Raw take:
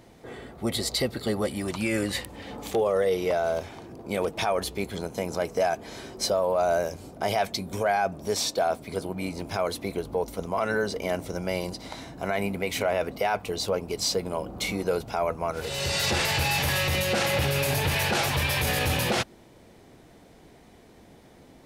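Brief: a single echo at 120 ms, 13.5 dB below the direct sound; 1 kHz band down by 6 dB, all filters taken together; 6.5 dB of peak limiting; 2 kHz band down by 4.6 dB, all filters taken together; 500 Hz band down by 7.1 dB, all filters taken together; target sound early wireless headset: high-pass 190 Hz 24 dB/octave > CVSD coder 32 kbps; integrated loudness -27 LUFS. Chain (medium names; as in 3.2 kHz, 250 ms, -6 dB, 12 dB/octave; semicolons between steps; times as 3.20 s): peaking EQ 500 Hz -7.5 dB; peaking EQ 1 kHz -4 dB; peaking EQ 2 kHz -4.5 dB; peak limiter -21.5 dBFS; high-pass 190 Hz 24 dB/octave; delay 120 ms -13.5 dB; CVSD coder 32 kbps; trim +7.5 dB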